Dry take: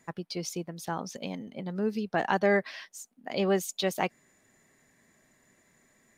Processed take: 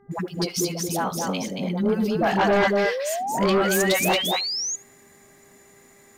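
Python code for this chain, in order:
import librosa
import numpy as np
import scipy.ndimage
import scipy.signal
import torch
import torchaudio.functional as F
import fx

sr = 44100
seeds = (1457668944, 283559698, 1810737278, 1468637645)

p1 = fx.high_shelf(x, sr, hz=10000.0, db=10.0)
p2 = fx.notch(p1, sr, hz=1800.0, q=15.0)
p3 = fx.dispersion(p2, sr, late='highs', ms=114.0, hz=470.0)
p4 = p3 + fx.echo_single(p3, sr, ms=227, db=-4.5, dry=0)
p5 = fx.spec_paint(p4, sr, seeds[0], shape='rise', start_s=2.84, length_s=1.92, low_hz=430.0, high_hz=6900.0, level_db=-36.0)
p6 = fx.fold_sine(p5, sr, drive_db=10, ceiling_db=-12.5)
p7 = p5 + F.gain(torch.from_numpy(p6), -9.0).numpy()
p8 = fx.dmg_buzz(p7, sr, base_hz=400.0, harmonics=5, level_db=-58.0, tilt_db=-8, odd_only=False)
y = p8 + 10.0 ** (-22.0 / 20.0) * np.pad(p8, (int(73 * sr / 1000.0), 0))[:len(p8)]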